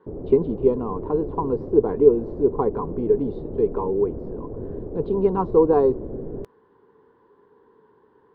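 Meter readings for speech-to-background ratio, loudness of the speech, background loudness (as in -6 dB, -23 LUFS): 12.0 dB, -22.0 LUFS, -34.0 LUFS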